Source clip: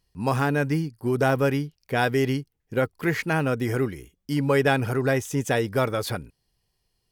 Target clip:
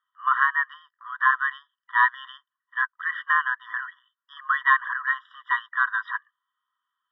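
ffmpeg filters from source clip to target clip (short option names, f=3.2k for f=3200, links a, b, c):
-af "highpass=f=550:t=q:w=0.5412,highpass=f=550:t=q:w=1.307,lowpass=f=2.4k:t=q:w=0.5176,lowpass=f=2.4k:t=q:w=0.7071,lowpass=f=2.4k:t=q:w=1.932,afreqshift=250,afftfilt=real='re*eq(mod(floor(b*sr/1024/970),2),1)':imag='im*eq(mod(floor(b*sr/1024/970),2),1)':win_size=1024:overlap=0.75,volume=7.5dB"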